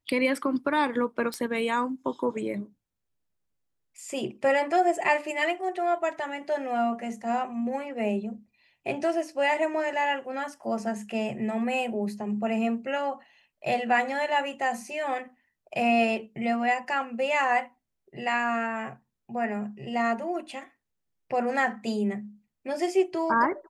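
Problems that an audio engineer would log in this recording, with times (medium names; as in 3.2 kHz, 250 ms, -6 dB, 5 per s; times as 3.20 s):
1.34 s: pop -18 dBFS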